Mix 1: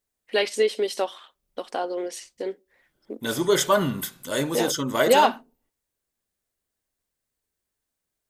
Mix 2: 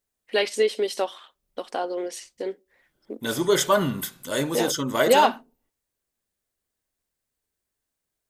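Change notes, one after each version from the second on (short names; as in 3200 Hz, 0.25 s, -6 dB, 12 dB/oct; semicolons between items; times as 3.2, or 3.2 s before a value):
none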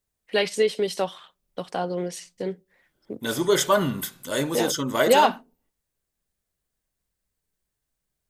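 first voice: remove brick-wall FIR high-pass 210 Hz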